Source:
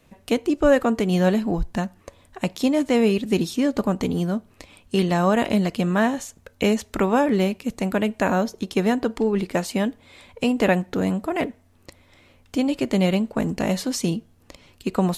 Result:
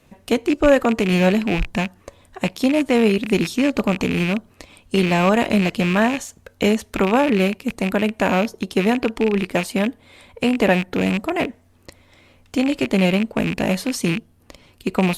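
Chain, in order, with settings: rattling part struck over -33 dBFS, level -17 dBFS; gain +2.5 dB; Opus 48 kbps 48000 Hz

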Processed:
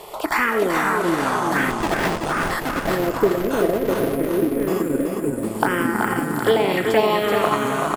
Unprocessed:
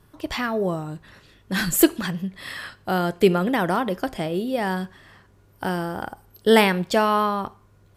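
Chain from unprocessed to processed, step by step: per-bin compression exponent 0.6; low shelf 270 Hz -8 dB; reverb, pre-delay 60 ms, DRR 6 dB; envelope phaser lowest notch 250 Hz, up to 1500 Hz, full sweep at -13 dBFS; de-esser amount 60%; 1.7–2.51 Schmitt trigger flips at -23.5 dBFS; 2.59–5.43 spectral gain 690–11000 Hz -19 dB; echoes that change speed 0.348 s, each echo -4 st, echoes 2; compressor, threshold -21 dBFS, peak gain reduction 7 dB; tone controls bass -12 dB, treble -7 dB; feedback echo 0.38 s, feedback 45%, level -5 dB; transient shaper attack +3 dB, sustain -3 dB; gain +8 dB

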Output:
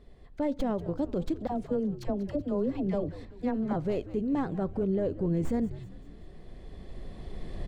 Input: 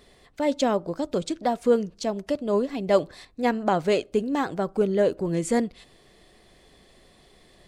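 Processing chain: tracing distortion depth 0.078 ms; recorder AGC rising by 8.2 dB/s; tilt -3.5 dB/oct; limiter -12.5 dBFS, peak gain reduction 10 dB; 1.47–3.76 dispersion lows, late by 59 ms, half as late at 660 Hz; frequency-shifting echo 0.191 s, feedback 53%, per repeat -97 Hz, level -15 dB; gain -8.5 dB

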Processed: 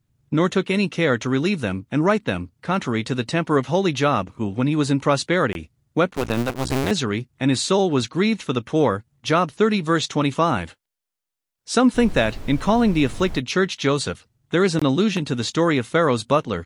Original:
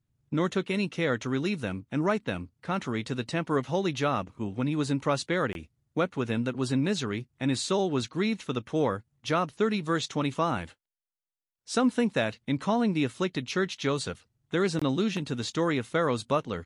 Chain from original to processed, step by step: 6.11–6.91 cycle switcher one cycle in 2, muted; 11.94–13.39 added noise brown -38 dBFS; gain +8 dB

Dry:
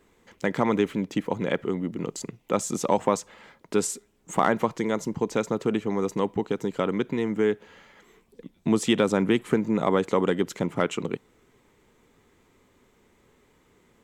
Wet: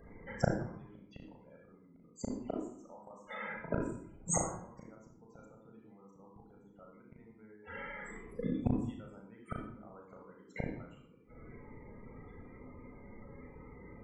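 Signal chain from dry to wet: dynamic EQ 1100 Hz, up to +4 dB, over -37 dBFS, Q 1.5; loudest bins only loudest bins 32; high shelf 7700 Hz +4.5 dB; flipped gate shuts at -26 dBFS, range -42 dB; reverb RT60 0.65 s, pre-delay 36 ms, DRR 0 dB; gain +6 dB

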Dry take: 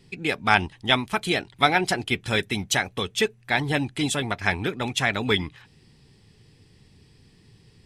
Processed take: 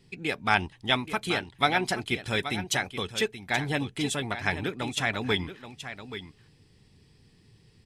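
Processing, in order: echo 0.828 s -11.5 dB; gain -4.5 dB

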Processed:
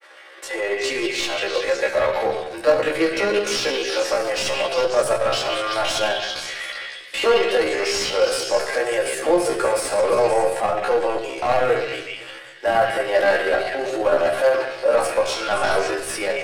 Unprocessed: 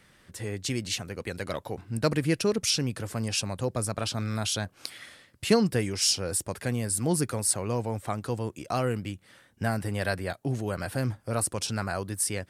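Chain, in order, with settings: Chebyshev high-pass 360 Hz, order 5; dynamic EQ 600 Hz, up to +5 dB, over -42 dBFS, Q 1.8; overdrive pedal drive 22 dB, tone 1300 Hz, clips at -10.5 dBFS; on a send: delay with a stepping band-pass 0.133 s, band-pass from 2500 Hz, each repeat 0.7 oct, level -0.5 dB; on the sum: vibrato 0.73 Hz 6.5 cents; grains 0.1 s, grains 20/s, spray 12 ms, pitch spread up and down by 0 st; in parallel at -6 dB: hard clip -29.5 dBFS, distortion -5 dB; on the sum: doubler 15 ms -3 dB; shoebox room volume 2000 m³, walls furnished, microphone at 2.3 m; tempo 0.76×

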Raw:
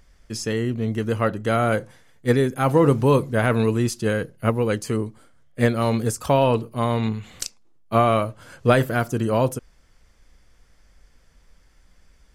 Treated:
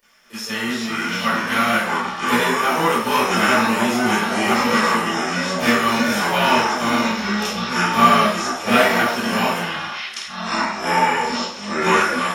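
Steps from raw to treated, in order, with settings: spectral whitening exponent 0.6; pre-emphasis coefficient 0.9; 0.73–1.15 compressor, threshold -37 dBFS, peak gain reduction 8 dB; flange 1.9 Hz, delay 10 ms, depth 4.2 ms, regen -72%; echoes that change speed 0.229 s, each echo -5 st, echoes 3; reverb RT60 0.60 s, pre-delay 27 ms, DRR -16.5 dB; gain +1.5 dB

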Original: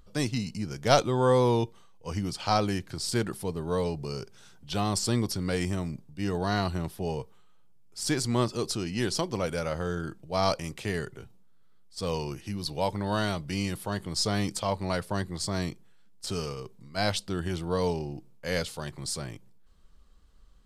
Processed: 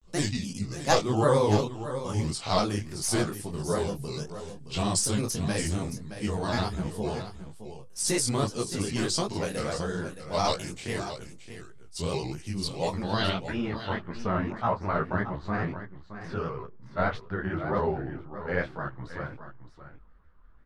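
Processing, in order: low-pass sweep 8800 Hz -> 1500 Hz, 12.88–13.6; grains, spray 26 ms, pitch spread up and down by 3 st; echo 0.62 s -11.5 dB; detuned doubles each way 56 cents; gain +4.5 dB

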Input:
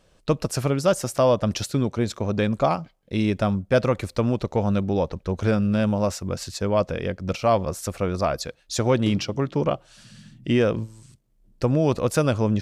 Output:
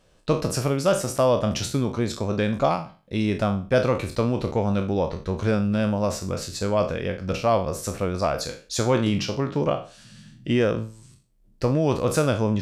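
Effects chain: spectral trails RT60 0.37 s; gain -1.5 dB

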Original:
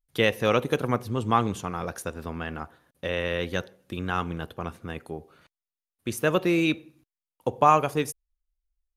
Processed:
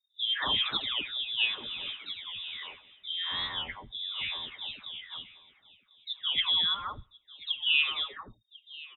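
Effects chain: spectral delay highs late, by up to 0.646 s; notch 1300 Hz, Q 6.4; echo 1.038 s -20 dB; inverted band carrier 3700 Hz; record warp 45 rpm, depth 100 cents; gain -4 dB

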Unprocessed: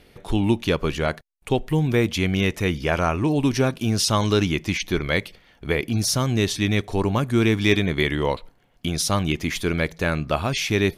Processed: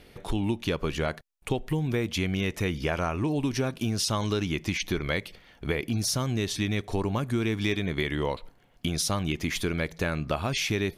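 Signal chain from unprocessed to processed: compressor 4:1, threshold -25 dBFS, peak gain reduction 10.5 dB

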